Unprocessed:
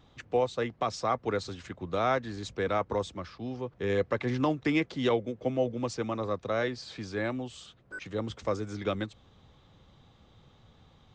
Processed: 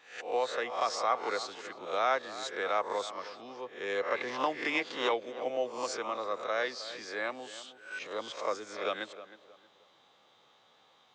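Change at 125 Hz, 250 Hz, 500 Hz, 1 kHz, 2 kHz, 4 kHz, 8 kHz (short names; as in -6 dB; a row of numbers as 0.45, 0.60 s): -25.5, -12.0, -3.0, +1.0, +2.0, +2.5, +3.0 dB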